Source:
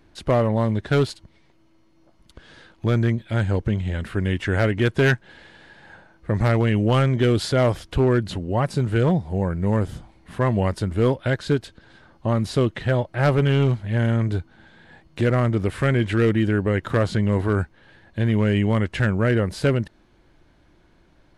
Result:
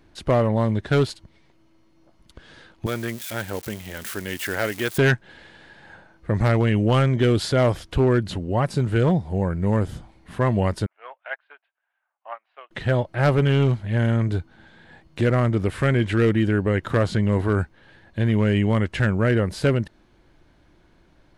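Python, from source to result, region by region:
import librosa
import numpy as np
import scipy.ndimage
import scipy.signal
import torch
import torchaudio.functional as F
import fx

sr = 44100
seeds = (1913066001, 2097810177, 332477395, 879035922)

y = fx.chain(x, sr, fx.crossing_spikes(level_db=-23.5),
    fx.highpass(hz=530.0, slope=6), at=(2.86, 4.98))
y = fx.chain(y, sr, fx.ellip_bandpass(low_hz=700.0, high_hz=2700.0, order=3, stop_db=70),
    fx.upward_expand(threshold_db=-42.0, expansion=2.5), at=(10.86, 12.71))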